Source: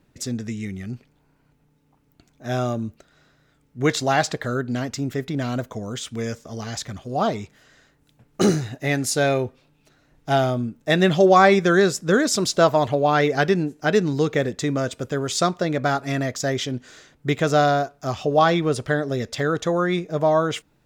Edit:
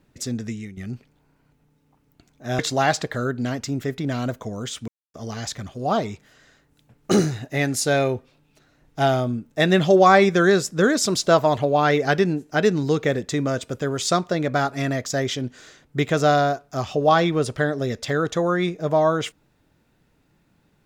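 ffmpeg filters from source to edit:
ffmpeg -i in.wav -filter_complex "[0:a]asplit=5[link_01][link_02][link_03][link_04][link_05];[link_01]atrim=end=0.77,asetpts=PTS-STARTPTS,afade=type=out:start_time=0.49:duration=0.28:silence=0.237137[link_06];[link_02]atrim=start=0.77:end=2.592,asetpts=PTS-STARTPTS,afade=type=in:duration=0.004:curve=hsin:silence=0.237137[link_07];[link_03]atrim=start=3.888:end=6.18,asetpts=PTS-STARTPTS,afade=type=out:start_time=2.288:duration=0.004:curve=hsin[link_08];[link_04]atrim=start=6.18:end=6.44,asetpts=PTS-STARTPTS,volume=0[link_09];[link_05]atrim=start=6.44,asetpts=PTS-STARTPTS,afade=type=in:duration=0.004:curve=hsin[link_10];[link_06][link_07]concat=n=2:v=0:a=1[link_11];[link_08][link_09][link_10]concat=n=3:v=0:a=1[link_12];[link_11][link_12]acrossfade=duration=0.004:curve1=hsin:curve2=hsin" out.wav

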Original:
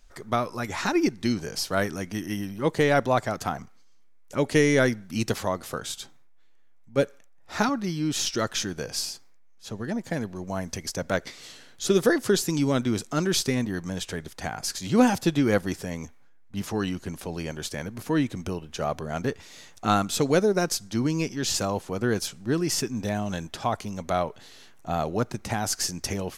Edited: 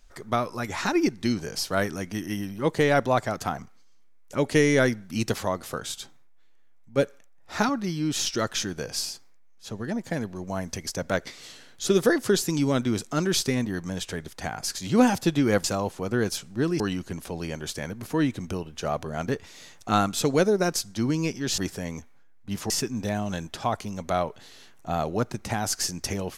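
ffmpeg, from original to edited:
ffmpeg -i in.wav -filter_complex "[0:a]asplit=5[link_01][link_02][link_03][link_04][link_05];[link_01]atrim=end=15.642[link_06];[link_02]atrim=start=21.538:end=22.702[link_07];[link_03]atrim=start=16.758:end=21.542[link_08];[link_04]atrim=start=15.638:end=16.762[link_09];[link_05]atrim=start=22.698[link_10];[link_06][link_07]acrossfade=duration=0.004:curve1=hsin:curve2=hsin[link_11];[link_11][link_08]acrossfade=duration=0.004:curve1=hsin:curve2=hsin[link_12];[link_12][link_09]acrossfade=duration=0.004:curve1=hsin:curve2=hsin[link_13];[link_13][link_10]acrossfade=duration=0.004:curve1=hsin:curve2=hsin" out.wav

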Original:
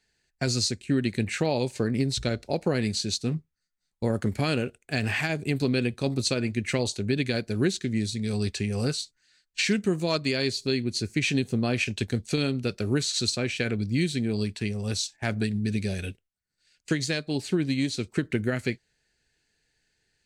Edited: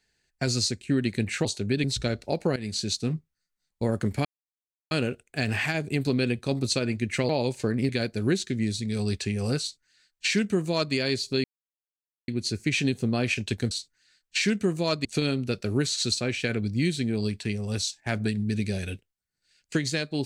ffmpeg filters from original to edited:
ffmpeg -i in.wav -filter_complex "[0:a]asplit=10[link_01][link_02][link_03][link_04][link_05][link_06][link_07][link_08][link_09][link_10];[link_01]atrim=end=1.452[link_11];[link_02]atrim=start=6.838:end=7.232[link_12];[link_03]atrim=start=2.048:end=2.77,asetpts=PTS-STARTPTS,afade=type=out:start_time=0.718:duration=0.004:curve=hsin:silence=0.177828[link_13];[link_04]atrim=start=2.77:end=4.46,asetpts=PTS-STARTPTS,afade=type=in:duration=0.25:silence=0.177828,afade=type=out:start_time=1.686:duration=0.004:curve=hsin,apad=pad_dur=0.66[link_14];[link_05]atrim=start=4.46:end=6.842,asetpts=PTS-STARTPTS,afade=type=in:duration=0.004:curve=hsin[link_15];[link_06]atrim=start=1.448:end=2.052[link_16];[link_07]atrim=start=7.228:end=10.78,asetpts=PTS-STARTPTS,afade=type=out:start_time=3.548:duration=0.004:curve=hsin,apad=pad_dur=0.84[link_17];[link_08]atrim=start=10.78:end=12.212,asetpts=PTS-STARTPTS,afade=type=in:duration=0.004:curve=hsin[link_18];[link_09]atrim=start=8.938:end=10.282[link_19];[link_10]atrim=start=12.208[link_20];[link_11][link_12]acrossfade=duration=0.004:curve1=hsin:curve2=hsin[link_21];[link_13][link_14][link_15]concat=n=3:v=0:a=1[link_22];[link_21][link_22]acrossfade=duration=0.004:curve1=hsin:curve2=hsin[link_23];[link_23][link_16]acrossfade=duration=0.004:curve1=hsin:curve2=hsin[link_24];[link_17][link_18]concat=n=2:v=0:a=1[link_25];[link_24][link_25]acrossfade=duration=0.004:curve1=hsin:curve2=hsin[link_26];[link_26][link_19]acrossfade=duration=0.004:curve1=hsin:curve2=hsin[link_27];[link_27][link_20]acrossfade=duration=0.004:curve1=hsin:curve2=hsin" out.wav

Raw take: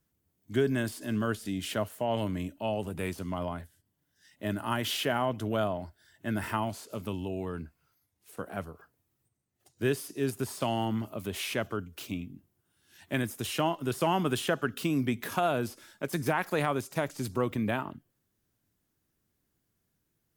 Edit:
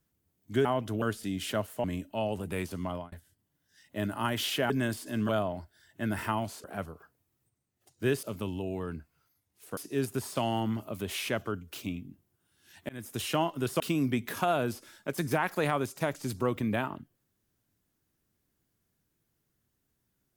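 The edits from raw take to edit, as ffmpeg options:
ffmpeg -i in.wav -filter_complex "[0:a]asplit=12[link_01][link_02][link_03][link_04][link_05][link_06][link_07][link_08][link_09][link_10][link_11][link_12];[link_01]atrim=end=0.652[link_13];[link_02]atrim=start=5.168:end=5.542[link_14];[link_03]atrim=start=1.238:end=2.062[link_15];[link_04]atrim=start=2.308:end=3.59,asetpts=PTS-STARTPTS,afade=type=out:start_time=0.972:duration=0.31:curve=qsin[link_16];[link_05]atrim=start=3.59:end=5.172,asetpts=PTS-STARTPTS,afade=type=in:duration=0.004:curve=hsin[link_17];[link_06]atrim=start=0.648:end=1.242[link_18];[link_07]atrim=start=5.538:end=6.892[link_19];[link_08]atrim=start=8.428:end=10.022[link_20];[link_09]atrim=start=6.888:end=8.432[link_21];[link_10]atrim=start=10.018:end=13.14,asetpts=PTS-STARTPTS,afade=type=out:start_time=3.118:duration=0.004:curve=hsin[link_22];[link_11]atrim=start=13.14:end=14.052,asetpts=PTS-STARTPTS,afade=type=in:duration=0.28[link_23];[link_12]atrim=start=14.748[link_24];[link_13][link_14]acrossfade=duration=0.004:curve1=hsin:curve2=hsin[link_25];[link_25][link_15]acrossfade=duration=0.004:curve1=hsin:curve2=hsin[link_26];[link_16][link_17]concat=n=2:v=0:a=1[link_27];[link_26][link_27]acrossfade=duration=0.004:curve1=hsin:curve2=hsin[link_28];[link_28][link_18]acrossfade=duration=0.004:curve1=hsin:curve2=hsin[link_29];[link_29][link_19]acrossfade=duration=0.004:curve1=hsin:curve2=hsin[link_30];[link_30][link_20]acrossfade=duration=0.004:curve1=hsin:curve2=hsin[link_31];[link_31][link_21]acrossfade=duration=0.004:curve1=hsin:curve2=hsin[link_32];[link_22][link_23]concat=n=2:v=0:a=1[link_33];[link_32][link_33]acrossfade=duration=0.004:curve1=hsin:curve2=hsin[link_34];[link_34][link_24]acrossfade=duration=0.004:curve1=hsin:curve2=hsin" out.wav

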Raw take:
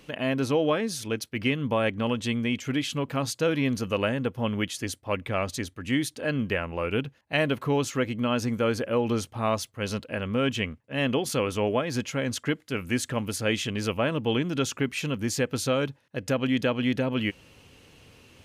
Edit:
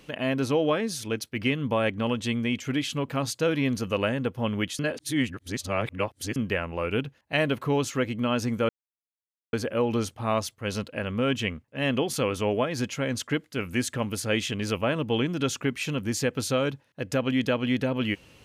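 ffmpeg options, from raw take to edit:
ffmpeg -i in.wav -filter_complex "[0:a]asplit=4[link_01][link_02][link_03][link_04];[link_01]atrim=end=4.792[link_05];[link_02]atrim=start=4.788:end=6.362,asetpts=PTS-STARTPTS,areverse[link_06];[link_03]atrim=start=6.358:end=8.69,asetpts=PTS-STARTPTS,afade=type=out:start_time=2.328:duration=0.004:curve=hsin,apad=pad_dur=0.84[link_07];[link_04]atrim=start=8.69,asetpts=PTS-STARTPTS,afade=type=in:duration=0.004:curve=hsin[link_08];[link_05][link_06]acrossfade=duration=0.004:curve1=hsin:curve2=hsin[link_09];[link_07][link_08]concat=n=2:v=0:a=1[link_10];[link_09][link_10]acrossfade=duration=0.004:curve1=hsin:curve2=hsin" out.wav

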